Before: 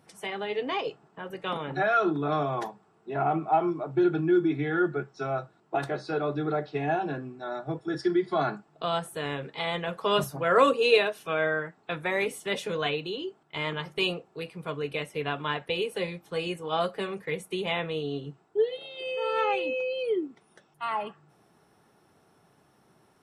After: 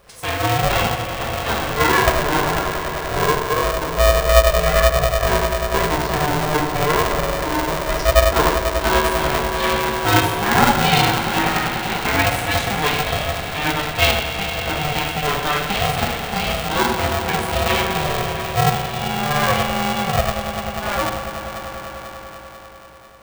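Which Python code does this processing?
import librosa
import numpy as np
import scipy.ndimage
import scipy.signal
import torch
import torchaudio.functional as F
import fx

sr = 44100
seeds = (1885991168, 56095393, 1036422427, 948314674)

p1 = fx.rider(x, sr, range_db=10, speed_s=2.0)
p2 = x + (p1 * 10.0 ** (3.0 / 20.0))
p3 = fx.echo_swell(p2, sr, ms=98, loudest=5, wet_db=-14.5)
p4 = fx.rev_fdn(p3, sr, rt60_s=0.91, lf_ratio=0.85, hf_ratio=0.85, size_ms=24.0, drr_db=-3.0)
p5 = p4 * np.sign(np.sin(2.0 * np.pi * 300.0 * np.arange(len(p4)) / sr))
y = p5 * 10.0 ** (-4.5 / 20.0)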